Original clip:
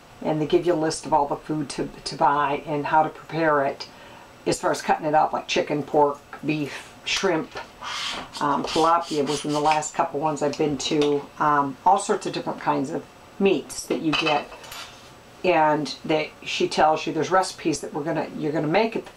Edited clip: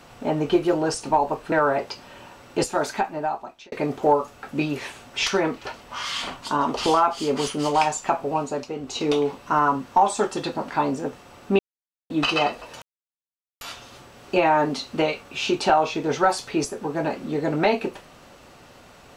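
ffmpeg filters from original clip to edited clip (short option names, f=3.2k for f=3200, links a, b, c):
-filter_complex "[0:a]asplit=8[a][b][c][d][e][f][g][h];[a]atrim=end=1.522[i];[b]atrim=start=3.418:end=5.62,asetpts=PTS-STARTPTS,afade=t=out:st=1.182:d=1.02[j];[c]atrim=start=5.62:end=10.59,asetpts=PTS-STARTPTS,afade=t=in:d=0.004:c=hsin,afade=t=out:st=4.6:d=0.37:silence=0.354813[k];[d]atrim=start=10.59:end=10.71,asetpts=PTS-STARTPTS,volume=-9dB[l];[e]atrim=start=10.71:end=13.49,asetpts=PTS-STARTPTS,afade=t=in:d=0.37:silence=0.354813,afade=t=out:st=2.776:d=0.004:c=hsin[m];[f]atrim=start=13.49:end=14,asetpts=PTS-STARTPTS,volume=0[n];[g]atrim=start=14:end=14.72,asetpts=PTS-STARTPTS,afade=t=in:d=0.004:c=hsin,afade=t=out:st=0.716:d=0.004:c=hsin,apad=pad_dur=0.79[o];[h]atrim=start=14.72,asetpts=PTS-STARTPTS,afade=t=in:d=0.004:c=hsin[p];[j][k][l][m][n][o][p]concat=n=7:v=0:a=1[q];[i][q]acrossfade=d=0.004:c1=hsin:c2=hsin"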